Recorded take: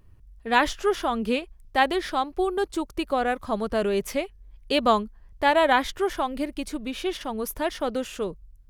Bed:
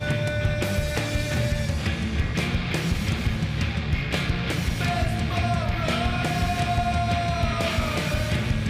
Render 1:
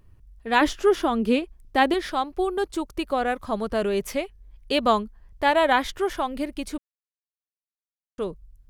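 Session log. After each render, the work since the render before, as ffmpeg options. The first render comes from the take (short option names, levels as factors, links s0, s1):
-filter_complex "[0:a]asettb=1/sr,asplit=3[s0][s1][s2];[s0]atrim=end=0.614[s3];[s1]atrim=start=0.61:end=1.94,asetpts=PTS-STARTPTS,afade=t=in:d=0.004:c=qsin,afade=t=out:st=1.326:d=0.004:c=qsin,equalizer=f=310:w=1.5:g=8[s4];[s2]atrim=start=1.936[s5];[s3][s4]acrossfade=d=0.004:c1=hsin:c2=qsin[s6];[s6][s5]acrossfade=d=0.004:c1=qsin:c2=hsin,asplit=3[s7][s8][s9];[s7]atrim=end=6.78,asetpts=PTS-STARTPTS,afade=t=out:st=6.776:d=0.004:c=hsin[s10];[s8]atrim=start=6.78:end=8.18,asetpts=PTS-STARTPTS,volume=0[s11];[s9]atrim=start=8.18,asetpts=PTS-STARTPTS,afade=t=in:d=0.004:c=hsin[s12];[s10][s11][s12]concat=n=3:v=0:a=1"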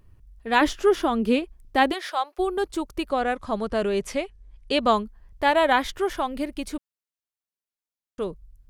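-filter_complex "[0:a]asplit=3[s0][s1][s2];[s0]afade=t=out:st=1.91:d=0.02[s3];[s1]highpass=f=510:w=0.5412,highpass=f=510:w=1.3066,afade=t=in:st=1.91:d=0.02,afade=t=out:st=2.38:d=0.02[s4];[s2]afade=t=in:st=2.38:d=0.02[s5];[s3][s4][s5]amix=inputs=3:normalize=0,asettb=1/sr,asplit=3[s6][s7][s8];[s6]atrim=end=3.094[s9];[s7]atrim=start=3.09:end=4.92,asetpts=PTS-STARTPTS,afade=t=in:d=0.004:c=qsin,afade=t=out:st=1.826:d=0.004:c=qsin,lowpass=f=10000:w=0.5412,lowpass=f=10000:w=1.3066[s10];[s8]atrim=start=4.916[s11];[s9][s10]acrossfade=d=0.004:c1=hsin:c2=qsin[s12];[s12][s11]acrossfade=d=0.004:c1=qsin:c2=hsin"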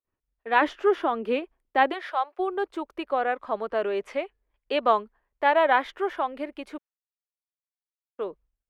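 -filter_complex "[0:a]agate=range=0.0224:threshold=0.01:ratio=3:detection=peak,acrossover=split=320 2900:gain=0.0708 1 0.1[s0][s1][s2];[s0][s1][s2]amix=inputs=3:normalize=0"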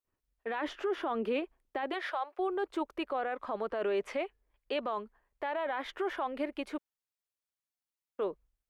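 -af "acompressor=threshold=0.0708:ratio=4,alimiter=level_in=1.12:limit=0.0631:level=0:latency=1:release=11,volume=0.891"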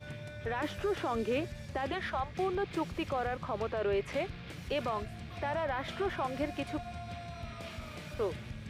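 -filter_complex "[1:a]volume=0.112[s0];[0:a][s0]amix=inputs=2:normalize=0"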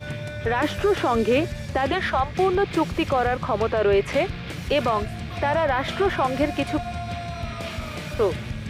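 -af "volume=3.98"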